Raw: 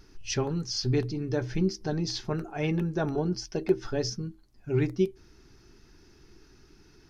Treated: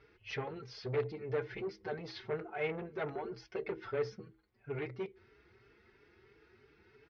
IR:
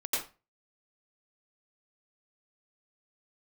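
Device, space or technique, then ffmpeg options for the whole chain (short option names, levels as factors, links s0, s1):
barber-pole flanger into a guitar amplifier: -filter_complex "[0:a]asplit=2[s0][s1];[s1]adelay=4.6,afreqshift=3[s2];[s0][s2]amix=inputs=2:normalize=1,asoftclip=type=tanh:threshold=0.0316,highpass=92,equalizer=f=170:t=q:w=4:g=-10,equalizer=f=290:t=q:w=4:g=-9,equalizer=f=450:t=q:w=4:g=9,equalizer=f=1400:t=q:w=4:g=4,equalizer=f=2100:t=q:w=4:g=9,lowpass=f=3600:w=0.5412,lowpass=f=3600:w=1.3066,volume=0.75"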